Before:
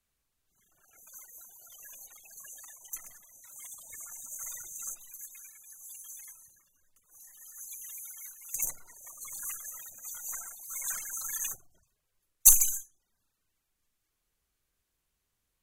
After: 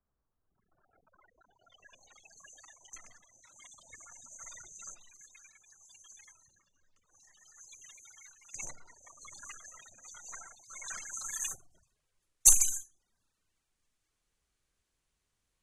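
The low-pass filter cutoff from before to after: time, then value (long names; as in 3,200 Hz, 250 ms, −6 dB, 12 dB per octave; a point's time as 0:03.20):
low-pass filter 24 dB per octave
0:01.08 1,300 Hz
0:01.44 2,400 Hz
0:02.20 5,800 Hz
0:10.86 5,800 Hz
0:11.52 10,000 Hz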